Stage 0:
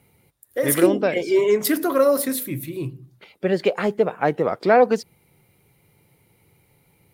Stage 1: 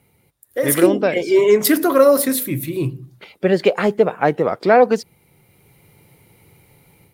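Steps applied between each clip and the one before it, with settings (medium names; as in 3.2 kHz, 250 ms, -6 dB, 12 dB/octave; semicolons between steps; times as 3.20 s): level rider gain up to 8 dB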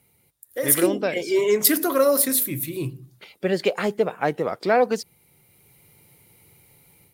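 treble shelf 3.5 kHz +9.5 dB; trim -7 dB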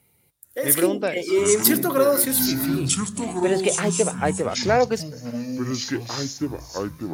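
ever faster or slower copies 430 ms, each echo -7 st, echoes 2, each echo -6 dB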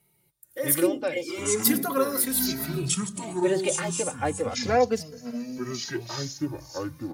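endless flanger 2.7 ms -0.34 Hz; trim -1.5 dB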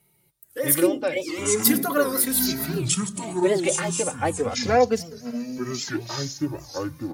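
warped record 78 rpm, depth 160 cents; trim +3 dB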